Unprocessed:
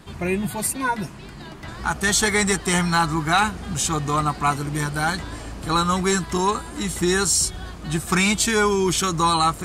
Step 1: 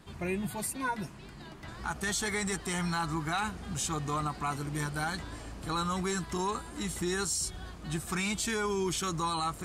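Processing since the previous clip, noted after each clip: limiter -14 dBFS, peak gain reduction 5.5 dB; gain -9 dB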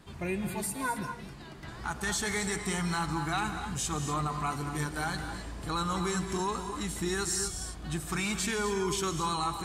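non-linear reverb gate 0.28 s rising, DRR 7 dB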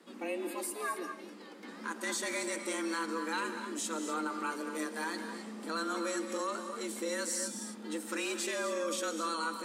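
frequency shift +160 Hz; gain -4 dB

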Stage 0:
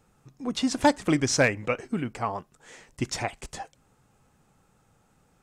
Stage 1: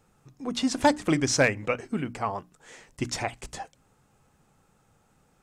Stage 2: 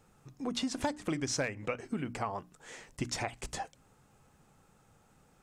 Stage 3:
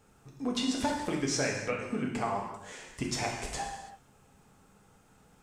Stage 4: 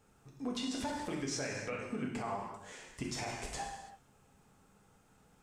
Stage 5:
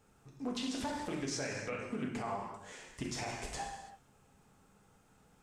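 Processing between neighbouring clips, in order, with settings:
notches 60/120/180/240/300 Hz
compressor 4:1, threshold -32 dBFS, peak gain reduction 14 dB
non-linear reverb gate 0.36 s falling, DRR -1 dB
limiter -24 dBFS, peak gain reduction 6.5 dB; gain -4.5 dB
Doppler distortion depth 0.18 ms

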